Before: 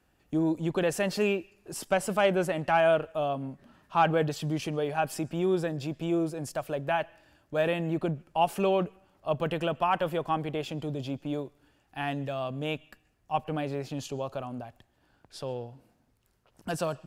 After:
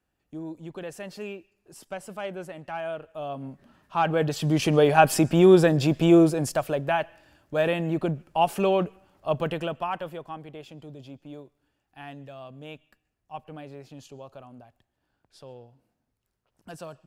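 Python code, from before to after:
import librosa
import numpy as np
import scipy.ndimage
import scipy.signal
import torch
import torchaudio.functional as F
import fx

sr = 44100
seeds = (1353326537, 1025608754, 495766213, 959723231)

y = fx.gain(x, sr, db=fx.line((2.96, -10.0), (3.47, -0.5), (4.03, -0.5), (4.78, 11.5), (6.2, 11.5), (6.95, 3.0), (9.37, 3.0), (10.33, -9.5)))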